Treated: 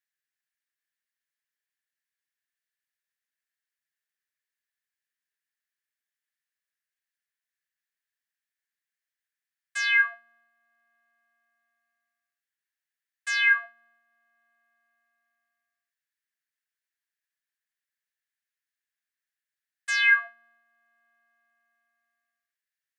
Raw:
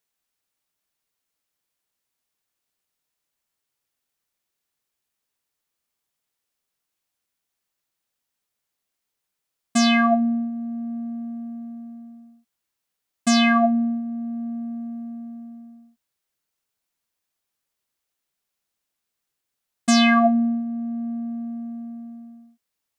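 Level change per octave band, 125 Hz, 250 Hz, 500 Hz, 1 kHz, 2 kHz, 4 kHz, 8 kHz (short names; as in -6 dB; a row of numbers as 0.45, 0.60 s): n/a, under -40 dB, under -30 dB, -18.0 dB, +4.0 dB, -7.5 dB, -11.0 dB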